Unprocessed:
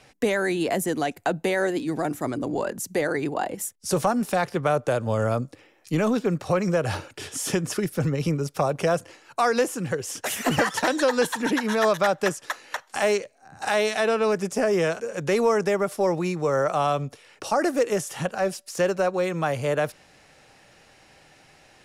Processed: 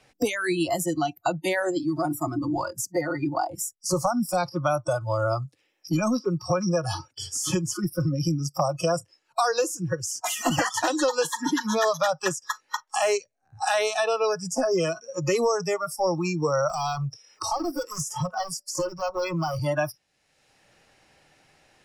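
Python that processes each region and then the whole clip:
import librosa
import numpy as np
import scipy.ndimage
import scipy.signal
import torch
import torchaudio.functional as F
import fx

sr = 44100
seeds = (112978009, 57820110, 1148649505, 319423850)

y = fx.chain(x, sr, fx.overload_stage(gain_db=27.0),
    fx.band_squash(depth_pct=40), at=(16.69, 19.59))
y = fx.noise_reduce_blind(y, sr, reduce_db=27)
y = fx.dynamic_eq(y, sr, hz=6600.0, q=2.1, threshold_db=-51.0, ratio=4.0, max_db=7)
y = fx.band_squash(y, sr, depth_pct=70)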